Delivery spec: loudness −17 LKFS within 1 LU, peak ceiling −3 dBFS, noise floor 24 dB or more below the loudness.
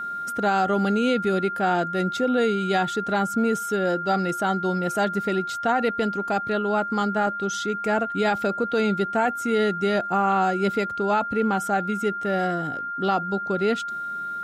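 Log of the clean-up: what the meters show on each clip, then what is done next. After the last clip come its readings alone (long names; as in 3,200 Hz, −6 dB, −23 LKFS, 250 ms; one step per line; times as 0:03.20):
interfering tone 1,400 Hz; level of the tone −28 dBFS; integrated loudness −24.0 LKFS; sample peak −11.0 dBFS; target loudness −17.0 LKFS
→ notch filter 1,400 Hz, Q 30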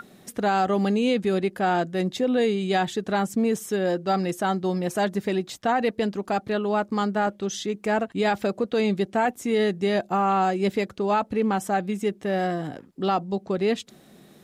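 interfering tone none found; integrated loudness −25.0 LKFS; sample peak −12.0 dBFS; target loudness −17.0 LKFS
→ level +8 dB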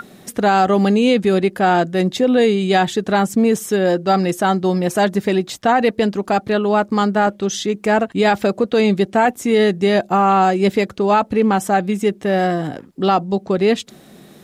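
integrated loudness −17.0 LKFS; sample peak −4.0 dBFS; background noise floor −46 dBFS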